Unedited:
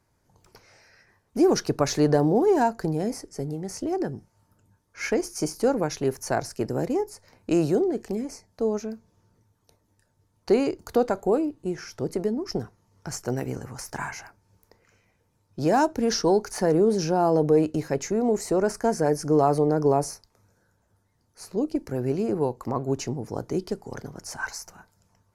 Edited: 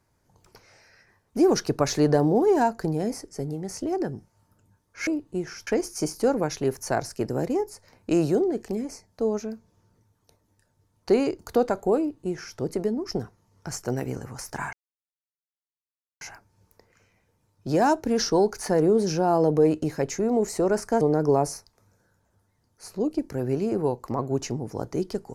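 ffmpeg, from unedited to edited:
-filter_complex "[0:a]asplit=5[a][b][c][d][e];[a]atrim=end=5.072[f];[b]atrim=start=11.378:end=11.982[g];[c]atrim=start=5.068:end=14.13,asetpts=PTS-STARTPTS,afade=t=out:st=9.058:d=0.004:c=hsin,apad=pad_dur=1.48[h];[d]atrim=start=14.13:end=18.932,asetpts=PTS-STARTPTS,afade=t=in:d=0.004:c=hsin[i];[e]atrim=start=19.578[j];[f][g]acrossfade=d=0.004:c1=hsin:c2=hsin[k];[h][i]concat=n=2:v=0:a=1[l];[k][l]acrossfade=d=0.004:c1=hsin:c2=hsin[m];[m][j]acrossfade=d=0.004:c1=hsin:c2=hsin"

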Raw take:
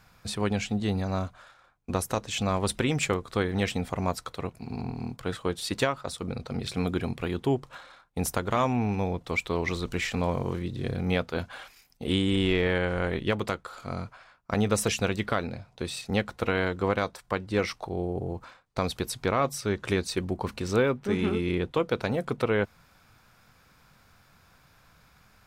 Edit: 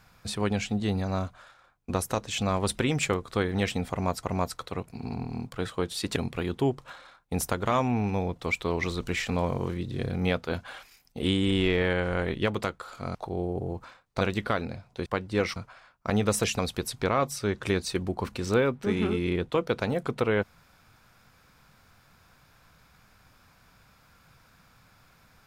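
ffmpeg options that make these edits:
-filter_complex "[0:a]asplit=8[a][b][c][d][e][f][g][h];[a]atrim=end=4.232[i];[b]atrim=start=3.898:end=5.832[j];[c]atrim=start=7.008:end=14.002[k];[d]atrim=start=17.748:end=18.812[l];[e]atrim=start=15.028:end=15.882[m];[f]atrim=start=17.248:end=17.752[n];[g]atrim=start=13.998:end=15.032[o];[h]atrim=start=18.808[p];[i][j]acrossfade=d=0.004:c1=hsin:c2=hsin[q];[q][k]acrossfade=d=0.004:c1=hsin:c2=hsin[r];[r][l]acrossfade=d=0.004:c1=hsin:c2=hsin[s];[s][m]acrossfade=d=0.004:c1=hsin:c2=hsin[t];[t][n]acrossfade=d=0.004:c1=hsin:c2=hsin[u];[u][o]acrossfade=d=0.004:c1=hsin:c2=hsin[v];[v][p]acrossfade=d=0.004:c1=hsin:c2=hsin"

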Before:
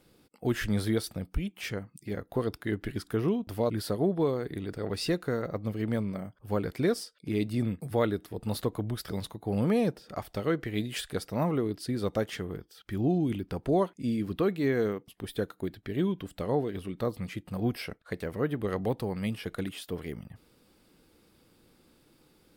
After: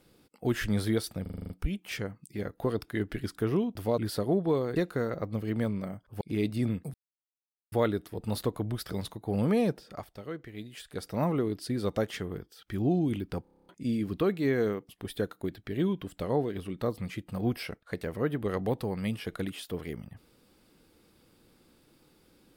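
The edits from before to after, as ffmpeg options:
-filter_complex "[0:a]asplit=22[a][b][c][d][e][f][g][h][i][j][k][l][m][n][o][p][q][r][s][t][u][v];[a]atrim=end=1.262[w];[b]atrim=start=1.218:end=1.262[x];[c]atrim=start=1.218:end=1.262[y];[d]atrim=start=1.218:end=1.262[z];[e]atrim=start=1.218:end=1.262[aa];[f]atrim=start=1.218:end=1.262[ab];[g]atrim=start=1.218:end=1.262[ac];[h]atrim=start=1.218:end=4.482[ad];[i]atrim=start=5.078:end=6.532[ae];[j]atrim=start=7.178:end=7.91,asetpts=PTS-STARTPTS,afade=t=out:st=0.728:d=0.004:c=hsin,apad=pad_dur=0.78[af];[k]atrim=start=7.91:end=10.3,asetpts=PTS-STARTPTS,afade=t=in:d=0.004:c=hsin,afade=t=out:st=2.12:d=0.27:silence=0.298538[ag];[l]atrim=start=10.3:end=11.05,asetpts=PTS-STARTPTS,volume=-10.5dB[ah];[m]atrim=start=11.05:end=13.642,asetpts=PTS-STARTPTS,afade=t=in:d=0.27:silence=0.298538[ai];[n]atrim=start=13.608:end=13.642[aj];[o]atrim=start=13.608:end=13.642[ak];[p]atrim=start=13.608:end=13.642[al];[q]atrim=start=13.608:end=13.642[am];[r]atrim=start=13.608:end=13.642[an];[s]atrim=start=13.608:end=13.642[ao];[t]atrim=start=13.608:end=13.642[ap];[u]atrim=start=13.608:end=13.642[aq];[v]atrim=start=13.878[ar];[w][x]acrossfade=d=0.004:c1=hsin:c2=hsin[as];[as][y]acrossfade=d=0.004:c1=hsin:c2=hsin[at];[at][z]acrossfade=d=0.004:c1=hsin:c2=hsin[au];[au][aa]acrossfade=d=0.004:c1=hsin:c2=hsin[av];[av][ab]acrossfade=d=0.004:c1=hsin:c2=hsin[aw];[aw][ac]acrossfade=d=0.004:c1=hsin:c2=hsin[ax];[ax][ad]acrossfade=d=0.004:c1=hsin:c2=hsin[ay];[ay][ae]acrossfade=d=0.004:c1=hsin:c2=hsin[az];[af][ag][ah][ai]concat=n=4:v=0:a=1[ba];[az][ba]acrossfade=d=0.004:c1=hsin:c2=hsin[bb];[bb][aj]acrossfade=d=0.004:c1=hsin:c2=hsin[bc];[bc][ak]acrossfade=d=0.004:c1=hsin:c2=hsin[bd];[bd][al]acrossfade=d=0.004:c1=hsin:c2=hsin[be];[be][am]acrossfade=d=0.004:c1=hsin:c2=hsin[bf];[bf][an]acrossfade=d=0.004:c1=hsin:c2=hsin[bg];[bg][ao]acrossfade=d=0.004:c1=hsin:c2=hsin[bh];[bh][ap]acrossfade=d=0.004:c1=hsin:c2=hsin[bi];[bi][aq]acrossfade=d=0.004:c1=hsin:c2=hsin[bj];[bj][ar]acrossfade=d=0.004:c1=hsin:c2=hsin"

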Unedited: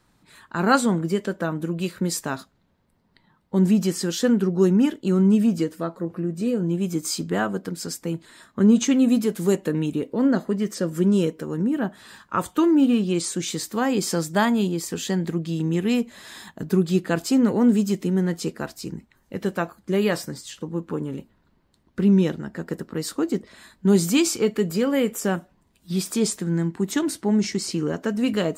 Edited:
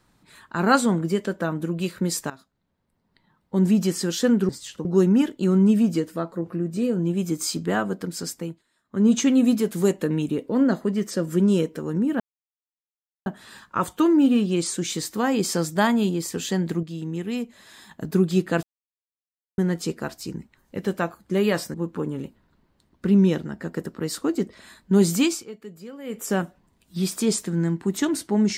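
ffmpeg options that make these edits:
-filter_complex "[0:a]asplit=14[a][b][c][d][e][f][g][h][i][j][k][l][m][n];[a]atrim=end=2.3,asetpts=PTS-STARTPTS,afade=t=out:st=2.296:d=0.004:c=hsin:silence=0.141254[o];[b]atrim=start=2.3:end=4.492,asetpts=PTS-STARTPTS,afade=t=in:d=1.54:silence=0.141254[p];[c]atrim=start=20.318:end=20.682[q];[d]atrim=start=4.488:end=8.27,asetpts=PTS-STARTPTS,afade=t=out:st=3.492:d=0.29:silence=0.0749894[r];[e]atrim=start=8.27:end=8.48,asetpts=PTS-STARTPTS,volume=-22.5dB[s];[f]atrim=start=8.48:end=11.84,asetpts=PTS-STARTPTS,afade=t=in:d=0.29:silence=0.0749894,afade=t=out:st=3.356:d=0.004:c=hsin,apad=pad_dur=1.06[t];[g]atrim=start=11.84:end=15.412,asetpts=PTS-STARTPTS,afade=t=in:d=0.004:c=hsin[u];[h]atrim=start=15.408:end=16.492,asetpts=PTS-STARTPTS,volume=-6.5dB[v];[i]atrim=start=16.488:end=17.21,asetpts=PTS-STARTPTS,afade=t=out:st=0.718:d=0.004:c=hsin[w];[j]atrim=start=17.21:end=18.16,asetpts=PTS-STARTPTS,volume=0[x];[k]atrim=start=18.16:end=20.322,asetpts=PTS-STARTPTS,afade=t=in:d=0.004:c=hsin[y];[l]atrim=start=20.678:end=24.4,asetpts=PTS-STARTPTS,afade=t=out:st=3.452:d=0.27:silence=0.133352[z];[m]atrim=start=24.4:end=24.98,asetpts=PTS-STARTPTS,volume=-17.5dB[aa];[n]atrim=start=24.98,asetpts=PTS-STARTPTS,afade=t=in:d=0.27:silence=0.133352[ab];[o][p]concat=n=2:v=0:a=1[ac];[ac][q]acrossfade=d=0.004:c1=hsin:c2=hsin[ad];[r][s][t][u]concat=n=4:v=0:a=1[ae];[ad][ae]acrossfade=d=0.004:c1=hsin:c2=hsin[af];[af][v]acrossfade=d=0.004:c1=hsin:c2=hsin[ag];[w][x][y]concat=n=3:v=0:a=1[ah];[ag][ah]acrossfade=d=0.004:c1=hsin:c2=hsin[ai];[z][aa][ab]concat=n=3:v=0:a=1[aj];[ai][aj]acrossfade=d=0.004:c1=hsin:c2=hsin"

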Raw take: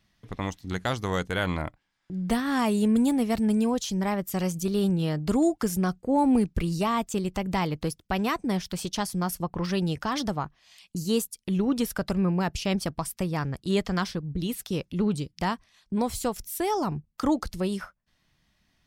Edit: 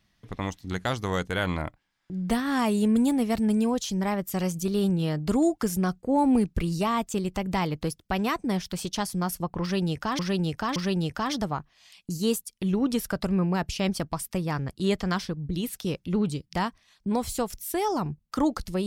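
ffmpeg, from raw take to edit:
-filter_complex "[0:a]asplit=3[a][b][c];[a]atrim=end=10.192[d];[b]atrim=start=9.618:end=10.192[e];[c]atrim=start=9.618[f];[d][e]acrossfade=d=0.004:c1=hsin:c2=hsin[g];[g][f]acrossfade=d=0.004:c1=hsin:c2=hsin"

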